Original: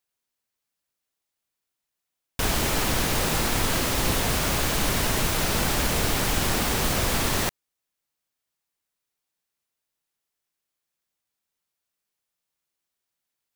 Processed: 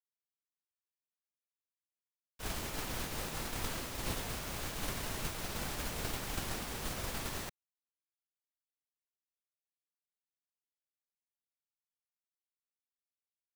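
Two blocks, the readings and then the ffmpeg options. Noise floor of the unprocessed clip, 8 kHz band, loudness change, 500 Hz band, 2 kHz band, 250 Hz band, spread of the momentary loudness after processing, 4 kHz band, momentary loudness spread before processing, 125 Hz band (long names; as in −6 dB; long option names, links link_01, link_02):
−84 dBFS, −15.5 dB, −15.5 dB, −15.5 dB, −15.5 dB, −15.5 dB, 2 LU, −15.5 dB, 1 LU, −15.0 dB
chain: -filter_complex "[0:a]agate=range=-33dB:threshold=-12dB:ratio=3:detection=peak,acrossover=split=230|810|6500[link_01][link_02][link_03][link_04];[link_01]acrusher=samples=35:mix=1:aa=0.000001[link_05];[link_05][link_02][link_03][link_04]amix=inputs=4:normalize=0,volume=1dB"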